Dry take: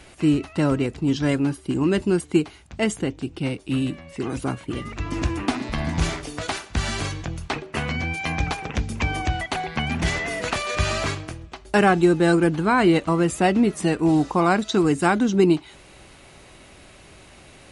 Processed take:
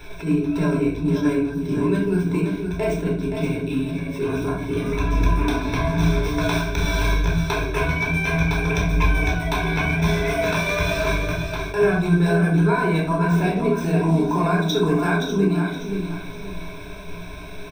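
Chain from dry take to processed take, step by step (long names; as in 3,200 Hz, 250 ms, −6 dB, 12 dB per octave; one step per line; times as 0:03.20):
running median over 5 samples
EQ curve with evenly spaced ripples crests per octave 1.6, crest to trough 17 dB
downward compressor 6 to 1, threshold −25 dBFS, peak gain reduction 15.5 dB
on a send: repeating echo 523 ms, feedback 29%, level −7.5 dB
on the sum: rectangular room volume 750 cubic metres, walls furnished, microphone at 4.2 metres
level that may rise only so fast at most 170 dB per second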